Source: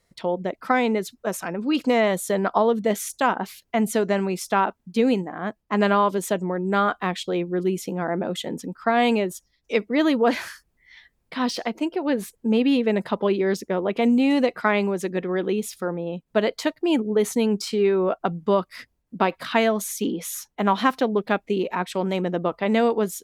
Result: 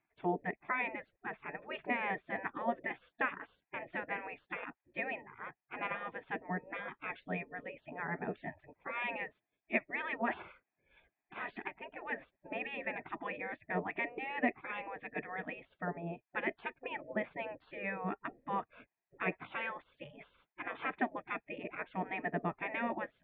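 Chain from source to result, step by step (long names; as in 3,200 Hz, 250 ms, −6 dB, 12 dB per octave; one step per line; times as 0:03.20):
formant resonators in series e
gate on every frequency bin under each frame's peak −20 dB weak
high-shelf EQ 3,500 Hz −10 dB
level +14 dB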